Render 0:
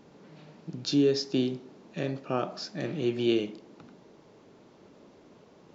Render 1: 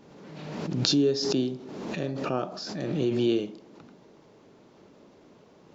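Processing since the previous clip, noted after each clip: dynamic EQ 2200 Hz, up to -6 dB, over -51 dBFS, Q 1.5; backwards sustainer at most 35 dB/s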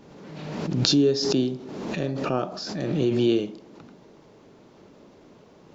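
low shelf 66 Hz +6.5 dB; gain +3 dB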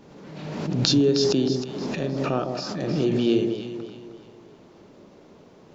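echo with dull and thin repeats by turns 0.156 s, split 820 Hz, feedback 61%, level -5 dB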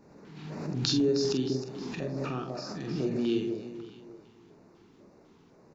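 LFO notch square 2 Hz 580–3200 Hz; doubler 46 ms -7 dB; gain -7.5 dB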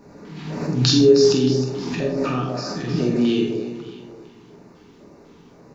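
non-linear reverb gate 0.16 s falling, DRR 2 dB; gain +8.5 dB

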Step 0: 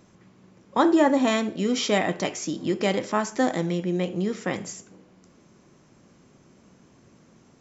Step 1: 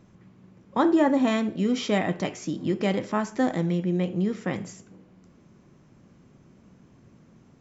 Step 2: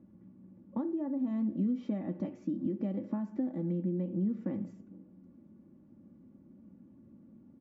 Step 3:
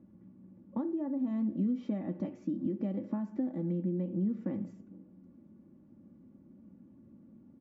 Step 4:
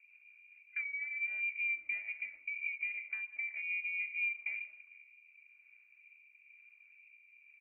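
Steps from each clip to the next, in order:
tone controls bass +7 dB, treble -6 dB; gain -3 dB
comb 3.5 ms, depth 68%; compressor 16:1, threshold -26 dBFS, peak gain reduction 14.5 dB; band-pass 190 Hz, Q 1.2
nothing audible
low shelf 65 Hz +6 dB; rotary speaker horn 5 Hz, later 1 Hz, at 3.5; inverted band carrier 2600 Hz; gain -4.5 dB

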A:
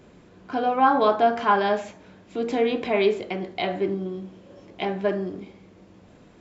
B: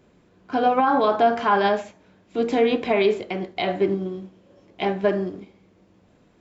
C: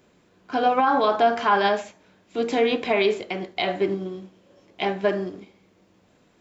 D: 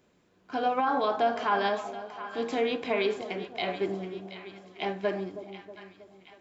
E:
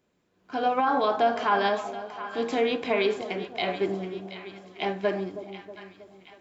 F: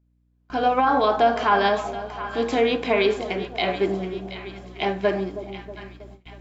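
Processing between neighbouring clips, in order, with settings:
maximiser +15 dB; upward expander 1.5:1, over -31 dBFS; gain -8.5 dB
tilt +1.5 dB/oct
split-band echo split 930 Hz, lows 0.319 s, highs 0.726 s, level -12 dB; gain -7 dB
AGC gain up to 9.5 dB; gain -6.5 dB
hum 60 Hz, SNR 20 dB; gate with hold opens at -38 dBFS; gain +4.5 dB

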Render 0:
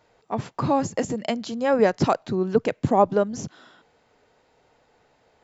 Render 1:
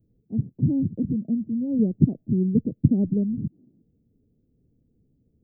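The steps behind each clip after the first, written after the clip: inverse Chebyshev band-stop 1300–6800 Hz, stop band 80 dB; gain +6.5 dB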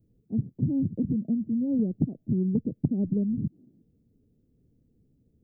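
compressor 6:1, threshold -22 dBFS, peak gain reduction 11.5 dB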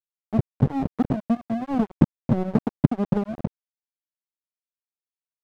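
transient shaper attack +3 dB, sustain -5 dB; crossover distortion -26.5 dBFS; gain +8.5 dB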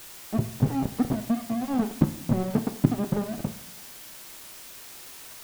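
zero-crossing step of -29 dBFS; two-slope reverb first 0.67 s, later 1.8 s, DRR 7.5 dB; gain -4 dB

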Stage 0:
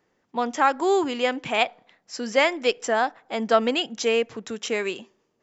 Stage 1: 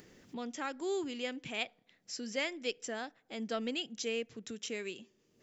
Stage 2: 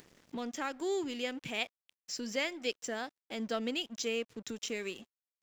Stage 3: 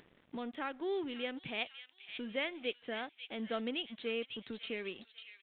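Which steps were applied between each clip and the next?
upward compressor, threshold -26 dBFS; bell 930 Hz -14 dB 1.7 oct; gain -9 dB
in parallel at -1 dB: compressor, threshold -44 dBFS, peak gain reduction 13.5 dB; on the sum: crossover distortion -53.5 dBFS
downsampling 8000 Hz; thin delay 0.547 s, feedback 41%, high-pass 2800 Hz, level -4.5 dB; gain -2.5 dB

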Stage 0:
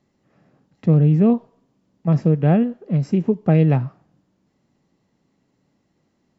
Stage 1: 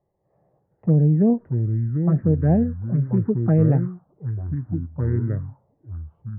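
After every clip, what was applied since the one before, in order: envelope phaser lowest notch 250 Hz, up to 1300 Hz, full sweep at -11 dBFS; echoes that change speed 0.339 s, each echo -5 st, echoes 2, each echo -6 dB; elliptic low-pass 1700 Hz, stop band 80 dB; gain -1 dB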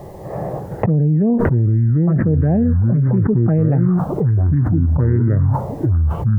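fast leveller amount 100%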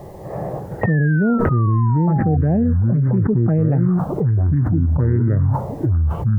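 painted sound fall, 0.81–2.37, 730–1900 Hz -28 dBFS; gain -1.5 dB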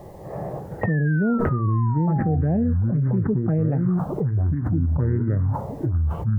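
flange 1.1 Hz, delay 3.5 ms, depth 1.5 ms, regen -86%

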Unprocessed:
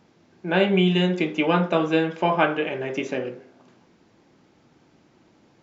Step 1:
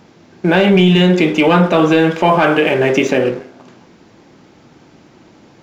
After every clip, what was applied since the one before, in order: sample leveller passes 1; in parallel at +1.5 dB: compressor, threshold -28 dBFS, peak gain reduction 14.5 dB; on the sum: limiter -11.5 dBFS, peak gain reduction 7.5 dB; gain +8 dB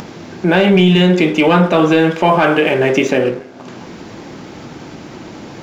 upward compressor, threshold -19 dBFS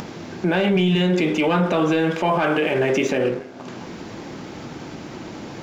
limiter -9.5 dBFS, peak gain reduction 6 dB; gain -2.5 dB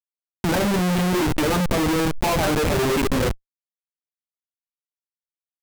per-bin expansion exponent 2; Schmitt trigger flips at -25 dBFS; backwards sustainer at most 41 dB/s; gain +6 dB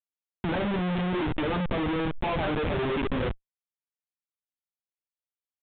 downsampling 8000 Hz; gain -7 dB

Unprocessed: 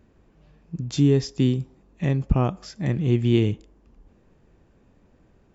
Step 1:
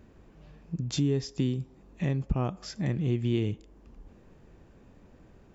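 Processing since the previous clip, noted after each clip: compressor 2:1, threshold -36 dBFS, peak gain reduction 12.5 dB; gain +3 dB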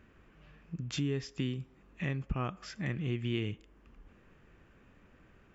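band shelf 1900 Hz +9.5 dB; gain -6.5 dB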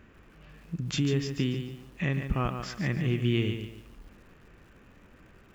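lo-fi delay 0.144 s, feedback 35%, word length 10-bit, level -7.5 dB; gain +5.5 dB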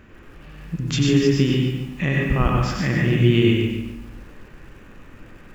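reverb RT60 0.70 s, pre-delay 90 ms, DRR -1 dB; gain +6.5 dB

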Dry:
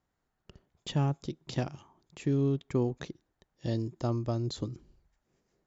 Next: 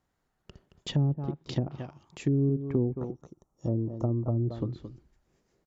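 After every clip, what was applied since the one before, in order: spectral gain 2.87–4.35, 1400–5400 Hz -18 dB; outdoor echo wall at 38 m, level -11 dB; treble ducked by the level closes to 390 Hz, closed at -26 dBFS; gain +3 dB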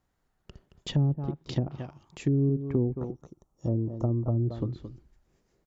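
low shelf 60 Hz +7.5 dB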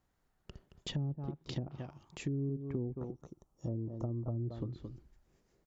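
compressor 2:1, threshold -38 dBFS, peak gain reduction 10 dB; gain -2 dB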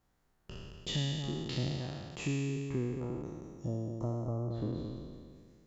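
spectral trails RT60 1.99 s

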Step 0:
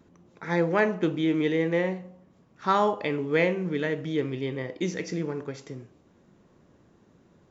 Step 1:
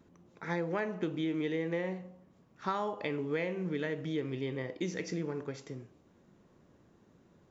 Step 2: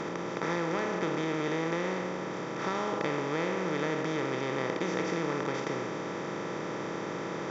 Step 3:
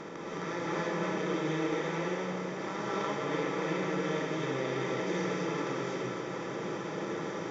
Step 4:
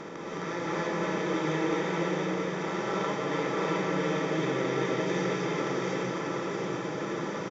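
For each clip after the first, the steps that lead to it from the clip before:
compressor 5:1, threshold -26 dBFS, peak gain reduction 8.5 dB; gain -4 dB
per-bin compression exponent 0.2; gain -4.5 dB
non-linear reverb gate 0.36 s rising, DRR -5 dB; gain -8 dB
echo 0.672 s -4.5 dB; gain +2 dB

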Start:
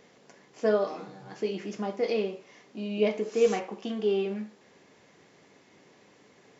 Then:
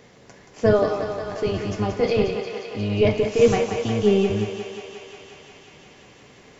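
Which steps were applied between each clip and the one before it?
octaver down 1 oct, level 0 dB; on a send: thinning echo 0.178 s, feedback 83%, high-pass 340 Hz, level -7 dB; on the sum: gain +6.5 dB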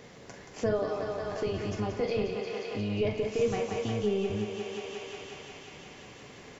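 doubler 43 ms -11 dB; compressor 2:1, threshold -35 dBFS, peak gain reduction 13.5 dB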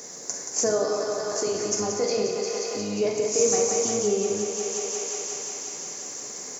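HPF 270 Hz 12 dB/oct; resonant high shelf 4500 Hz +13.5 dB, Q 3; on a send at -6 dB: reverb RT60 0.95 s, pre-delay 42 ms; on the sum: gain +5 dB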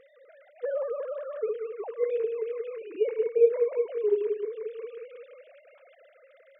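sine-wave speech; gain -3.5 dB

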